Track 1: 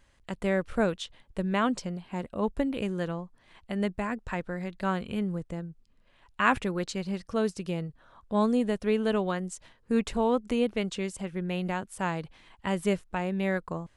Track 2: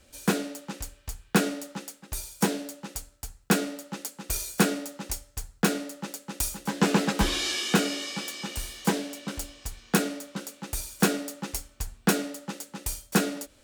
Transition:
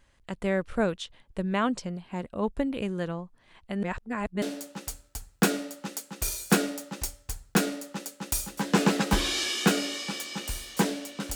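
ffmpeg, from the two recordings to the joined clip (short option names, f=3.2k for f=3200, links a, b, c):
-filter_complex "[0:a]apad=whole_dur=11.35,atrim=end=11.35,asplit=2[a][b];[a]atrim=end=3.832[c];[b]atrim=start=3.828:end=4.422,asetpts=PTS-STARTPTS,areverse[d];[1:a]atrim=start=2.498:end=9.43[e];[c][d]acrossfade=d=0.004:c1=hsin:c2=hsin[f];[f][e]acrossfade=d=0.004:c1=hsin:c2=hsin"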